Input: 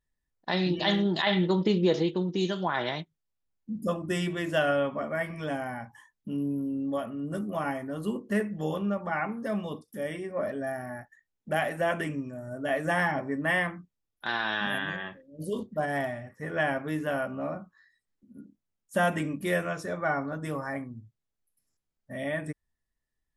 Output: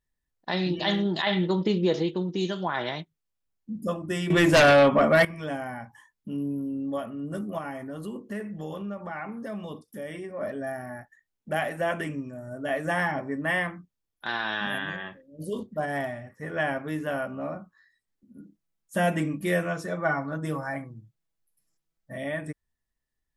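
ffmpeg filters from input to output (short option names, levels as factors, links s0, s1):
-filter_complex "[0:a]asettb=1/sr,asplit=3[s0][s1][s2];[s0]atrim=end=4.304[s3];[s1]atrim=start=4.3:end=5.25,asetpts=PTS-STARTPTS,afade=t=in:d=0.004:c=qsin,afade=t=out:st=0.946:d=0.004:c=qsin,aeval=exprs='0.224*sin(PI/2*3.16*val(0)/0.224)':c=same[s4];[s2]atrim=start=5.246[s5];[s3][s4]acrossfade=d=0.004:c1=hsin:c2=qsin[s6];[s6][s5]acrossfade=d=0.004:c1=qsin:c2=hsin,asettb=1/sr,asplit=3[s7][s8][s9];[s7]atrim=end=7.584[s10];[s8]atrim=start=7.58:end=10.41,asetpts=PTS-STARTPTS,afade=t=in:d=0.004:c=qsin,afade=t=out:st=2.826:d=0.004:c=qsin,acompressor=threshold=0.0224:ratio=2.5:attack=3.2:release=140:knee=1:detection=peak[s11];[s9]atrim=start=10.406[s12];[s10][s11]acrossfade=d=0.004:c1=hsin:c2=qsin[s13];[s13][s12]acrossfade=d=0.004:c1=qsin:c2=hsin,asettb=1/sr,asplit=3[s14][s15][s16];[s14]atrim=end=18.404[s17];[s15]atrim=start=18.4:end=22.18,asetpts=PTS-STARTPTS,afade=t=in:d=0.004:c=qsin,afade=t=out:st=3.776:d=0.004:c=qsin,aecho=1:1:6.1:0.65,atrim=end_sample=166698[s18];[s16]atrim=start=22.176[s19];[s17][s18]acrossfade=d=0.004:c1=hsin:c2=qsin[s20];[s20][s19]acrossfade=d=0.004:c1=qsin:c2=hsin"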